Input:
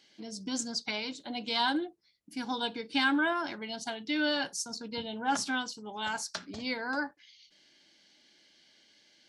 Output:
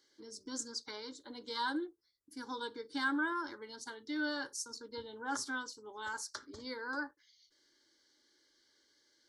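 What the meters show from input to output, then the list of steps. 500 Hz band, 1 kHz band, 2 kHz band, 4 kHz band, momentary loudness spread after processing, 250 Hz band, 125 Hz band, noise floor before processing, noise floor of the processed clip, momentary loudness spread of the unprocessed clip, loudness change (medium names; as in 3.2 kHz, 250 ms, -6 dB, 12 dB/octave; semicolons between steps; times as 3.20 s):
-7.0 dB, -7.0 dB, -6.0 dB, -10.5 dB, 11 LU, -7.0 dB, -13.0 dB, -66 dBFS, -74 dBFS, 10 LU, -7.0 dB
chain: static phaser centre 700 Hz, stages 6; trim -3.5 dB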